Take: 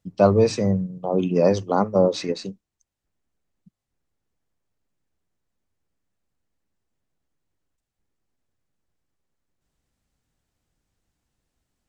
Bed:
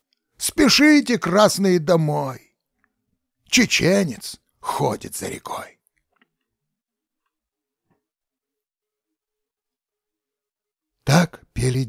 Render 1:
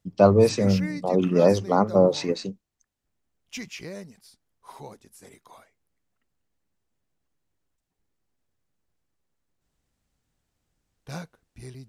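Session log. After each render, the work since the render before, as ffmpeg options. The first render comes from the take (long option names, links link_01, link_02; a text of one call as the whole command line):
ffmpeg -i in.wav -i bed.wav -filter_complex "[1:a]volume=-21dB[link_01];[0:a][link_01]amix=inputs=2:normalize=0" out.wav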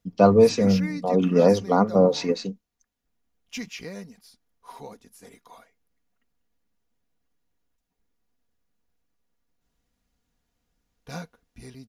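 ffmpeg -i in.wav -af "equalizer=frequency=8300:width=7.6:gain=-13,aecho=1:1:4.2:0.49" out.wav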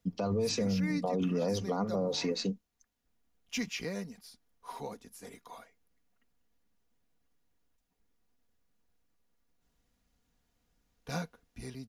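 ffmpeg -i in.wav -filter_complex "[0:a]acrossover=split=130|3000[link_01][link_02][link_03];[link_02]acompressor=threshold=-23dB:ratio=2.5[link_04];[link_01][link_04][link_03]amix=inputs=3:normalize=0,alimiter=limit=-23dB:level=0:latency=1:release=72" out.wav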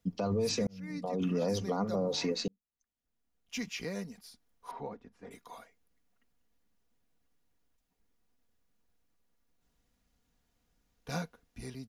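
ffmpeg -i in.wav -filter_complex "[0:a]asettb=1/sr,asplit=3[link_01][link_02][link_03];[link_01]atrim=end=4.714[link_04];[link_02]atrim=start=4.71:end=5.31,asetpts=PTS-STARTPTS,afade=type=in:duration=0.004:curve=qsin,afade=type=out:start_time=0.596:duration=0.004:curve=qsin,lowpass=1900[link_05];[link_03]atrim=start=5.306[link_06];[link_04][link_05]acrossfade=duration=0.004:curve1=hsin:curve2=qsin[link_07];[link_07][link_06]acrossfade=duration=0.004:curve1=qsin:curve2=hsin,asplit=3[link_08][link_09][link_10];[link_08]atrim=end=0.67,asetpts=PTS-STARTPTS,afade=type=out:start_time=0.666:duration=0.004:curve=hsin[link_11];[link_09]atrim=start=0.67:end=2.48,asetpts=PTS-STARTPTS,afade=type=in:duration=0.63,afade=type=out:start_time=1.806:duration=0.004:curve=hsin[link_12];[link_10]atrim=start=2.48,asetpts=PTS-STARTPTS,afade=type=in:duration=1.54[link_13];[link_11][link_12][link_13]concat=n=3:v=0:a=1" out.wav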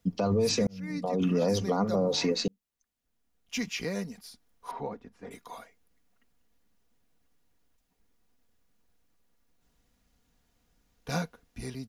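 ffmpeg -i in.wav -af "volume=5dB" out.wav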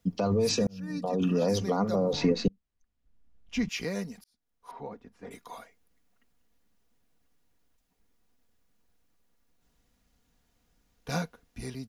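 ffmpeg -i in.wav -filter_complex "[0:a]asettb=1/sr,asplit=3[link_01][link_02][link_03];[link_01]atrim=end=0.534[link_04];[link_02]atrim=start=0.53:end=1.47,asetpts=PTS-STARTPTS,afade=type=in:duration=0.004:curve=qsin,afade=type=out:start_time=0.936:duration=0.004:curve=qsin,asuperstop=centerf=2100:order=12:qfactor=5.7[link_05];[link_03]atrim=start=1.466[link_06];[link_04][link_05]acrossfade=duration=0.004:curve1=hsin:curve2=qsin[link_07];[link_07][link_06]acrossfade=duration=0.004:curve1=qsin:curve2=hsin,asettb=1/sr,asplit=3[link_08][link_09][link_10];[link_08]atrim=end=2.134[link_11];[link_09]atrim=start=2.13:end=3.69,asetpts=PTS-STARTPTS,afade=type=in:duration=0.004:curve=qsin,afade=type=out:start_time=1.556:duration=0.004:curve=qsin,aemphasis=mode=reproduction:type=bsi[link_12];[link_10]atrim=start=3.686[link_13];[link_11][link_12]acrossfade=duration=0.004:curve1=hsin:curve2=qsin[link_14];[link_14][link_13]acrossfade=duration=0.004:curve1=qsin:curve2=hsin,asplit=2[link_15][link_16];[link_15]atrim=end=4.24,asetpts=PTS-STARTPTS,afade=type=out:start_time=4.236:duration=0.004:curve=hsin[link_17];[link_16]atrim=start=4.24,asetpts=PTS-STARTPTS,afade=type=in:duration=1.02[link_18];[link_17][link_18]concat=n=2:v=0:a=1" out.wav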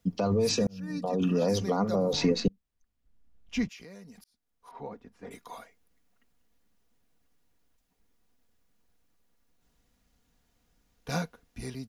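ffmpeg -i in.wav -filter_complex "[0:a]asettb=1/sr,asplit=3[link_01][link_02][link_03];[link_01]atrim=end=2.004[link_04];[link_02]atrim=start=2:end=2.4,asetpts=PTS-STARTPTS,afade=type=in:duration=0.004:curve=qsin,afade=type=out:start_time=0.396:duration=0.004:curve=qsin,aemphasis=mode=production:type=cd[link_05];[link_03]atrim=start=2.396[link_06];[link_04][link_05]acrossfade=duration=0.004:curve1=hsin:curve2=qsin[link_07];[link_07][link_06]acrossfade=duration=0.004:curve1=qsin:curve2=hsin,asettb=1/sr,asplit=3[link_08][link_09][link_10];[link_08]atrim=end=3.674[link_11];[link_09]atrim=start=3.67:end=4.75,asetpts=PTS-STARTPTS,afade=type=in:duration=0.004:curve=qsin,afade=type=out:start_time=1.076:duration=0.004:curve=qsin,acompressor=threshold=-47dB:ratio=4:attack=3.2:release=140:knee=1:detection=peak[link_12];[link_10]atrim=start=4.746[link_13];[link_11][link_12]acrossfade=duration=0.004:curve1=hsin:curve2=qsin[link_14];[link_14][link_13]acrossfade=duration=0.004:curve1=qsin:curve2=hsin" out.wav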